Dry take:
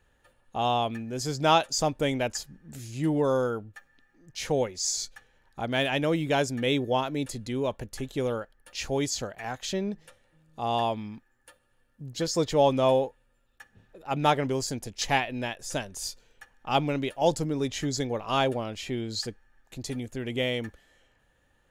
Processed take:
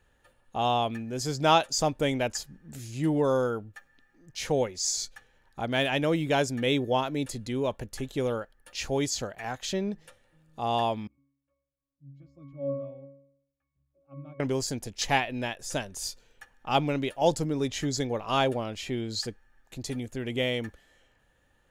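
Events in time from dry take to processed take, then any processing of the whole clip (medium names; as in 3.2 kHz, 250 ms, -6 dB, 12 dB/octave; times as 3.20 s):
11.07–14.40 s: pitch-class resonator C#, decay 0.73 s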